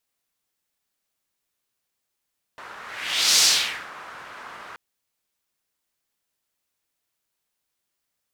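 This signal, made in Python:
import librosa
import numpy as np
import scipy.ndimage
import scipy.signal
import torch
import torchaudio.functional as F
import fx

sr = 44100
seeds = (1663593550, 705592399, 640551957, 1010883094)

y = fx.whoosh(sr, seeds[0], length_s=2.18, peak_s=0.84, rise_s=0.66, fall_s=0.51, ends_hz=1300.0, peak_hz=5400.0, q=2.0, swell_db=24)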